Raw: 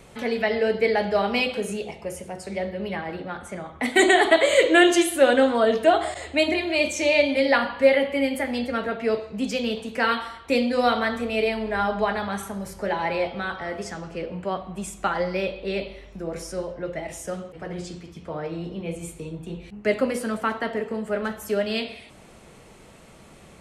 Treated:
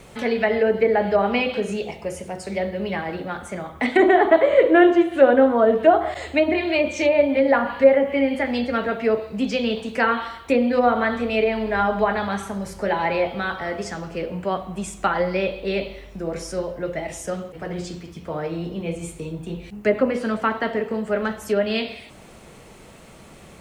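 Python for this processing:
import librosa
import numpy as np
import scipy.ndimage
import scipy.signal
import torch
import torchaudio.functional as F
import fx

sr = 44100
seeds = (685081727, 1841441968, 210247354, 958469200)

y = fx.env_lowpass_down(x, sr, base_hz=1300.0, full_db=-16.5)
y = fx.quant_dither(y, sr, seeds[0], bits=12, dither='triangular')
y = y * librosa.db_to_amplitude(3.5)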